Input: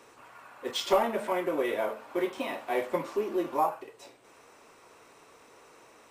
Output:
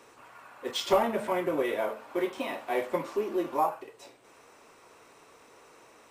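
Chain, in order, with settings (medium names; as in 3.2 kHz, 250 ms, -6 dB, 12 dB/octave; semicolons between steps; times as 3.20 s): 0.88–1.63 s: peaking EQ 110 Hz +10.5 dB 1.2 oct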